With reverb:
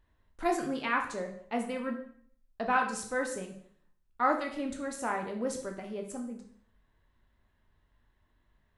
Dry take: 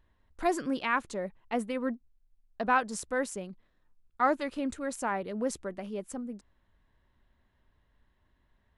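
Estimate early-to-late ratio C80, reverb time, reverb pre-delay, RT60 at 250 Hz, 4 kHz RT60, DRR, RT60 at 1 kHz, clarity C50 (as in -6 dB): 11.5 dB, 0.55 s, 6 ms, 0.55 s, 0.55 s, 2.0 dB, 0.55 s, 8.0 dB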